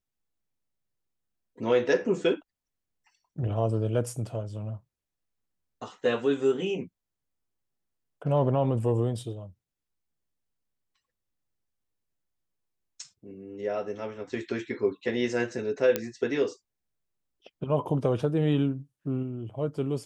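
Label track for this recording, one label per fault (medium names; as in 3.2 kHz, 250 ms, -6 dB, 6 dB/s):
15.960000	15.960000	pop -11 dBFS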